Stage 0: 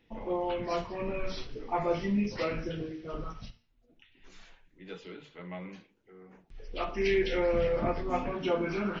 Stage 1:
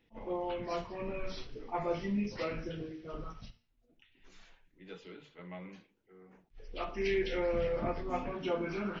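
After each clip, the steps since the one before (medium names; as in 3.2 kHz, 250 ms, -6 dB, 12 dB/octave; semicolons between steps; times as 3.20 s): attacks held to a fixed rise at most 350 dB/s; trim -4.5 dB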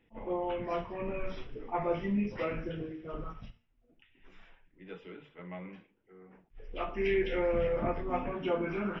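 Savitzky-Golay filter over 25 samples; trim +2.5 dB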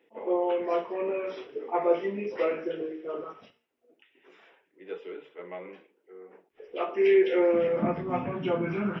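high-pass sweep 410 Hz -> 120 Hz, 7.31–8.19 s; trim +2.5 dB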